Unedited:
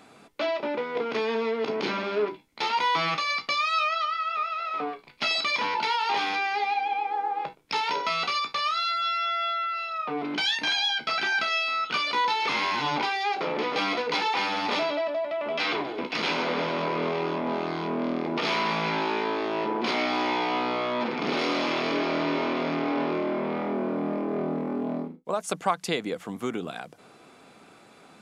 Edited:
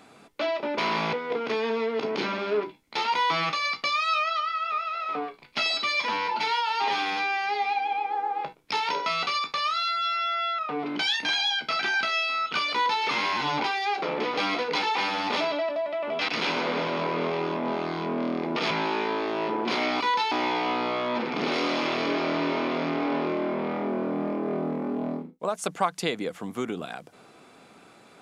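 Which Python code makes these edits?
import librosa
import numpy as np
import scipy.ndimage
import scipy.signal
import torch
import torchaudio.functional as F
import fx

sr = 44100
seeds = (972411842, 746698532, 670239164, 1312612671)

y = fx.edit(x, sr, fx.stretch_span(start_s=5.37, length_s=1.29, factor=1.5),
    fx.cut(start_s=9.59, length_s=0.38),
    fx.duplicate(start_s=12.11, length_s=0.31, to_s=20.17),
    fx.cut(start_s=15.67, length_s=0.43),
    fx.move(start_s=18.52, length_s=0.35, to_s=0.78), tone=tone)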